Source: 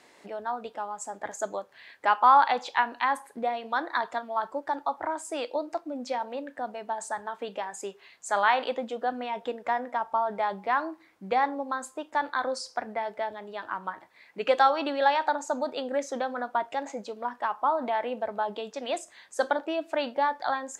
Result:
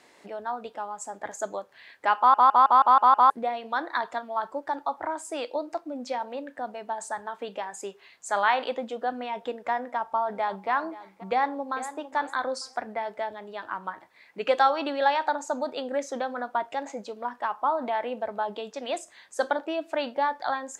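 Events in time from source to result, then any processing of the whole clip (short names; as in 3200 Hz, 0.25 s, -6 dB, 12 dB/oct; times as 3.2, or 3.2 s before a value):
2.18 stutter in place 0.16 s, 7 plays
9.75–10.7 echo throw 0.53 s, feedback 30%, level -16.5 dB
11.3–11.9 echo throw 0.45 s, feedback 25%, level -12.5 dB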